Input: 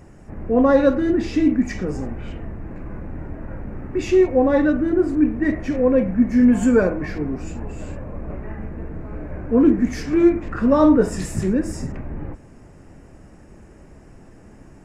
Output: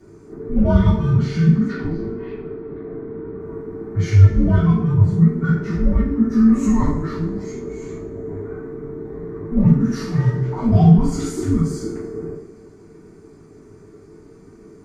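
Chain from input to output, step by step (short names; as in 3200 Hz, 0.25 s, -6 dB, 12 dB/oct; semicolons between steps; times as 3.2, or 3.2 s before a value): 1.67–3.4 steep low-pass 4700 Hz 36 dB/oct; reverb, pre-delay 3 ms, DRR -7.5 dB; frequency shift -470 Hz; gain -7.5 dB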